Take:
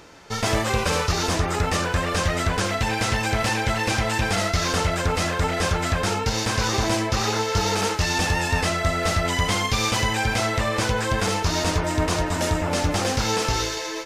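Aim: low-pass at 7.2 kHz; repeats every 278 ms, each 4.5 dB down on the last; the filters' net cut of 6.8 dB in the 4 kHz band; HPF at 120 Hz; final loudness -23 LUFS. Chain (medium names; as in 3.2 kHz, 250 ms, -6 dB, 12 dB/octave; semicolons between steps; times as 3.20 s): high-pass 120 Hz; low-pass 7.2 kHz; peaking EQ 4 kHz -8.5 dB; feedback delay 278 ms, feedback 60%, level -4.5 dB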